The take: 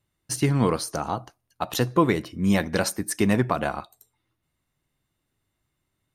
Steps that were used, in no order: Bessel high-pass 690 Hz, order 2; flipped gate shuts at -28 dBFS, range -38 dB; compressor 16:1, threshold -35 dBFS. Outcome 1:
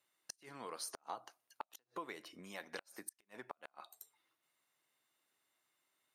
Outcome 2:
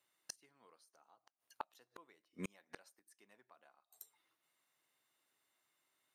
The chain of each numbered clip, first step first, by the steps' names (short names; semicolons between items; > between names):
compressor > Bessel high-pass > flipped gate; Bessel high-pass > flipped gate > compressor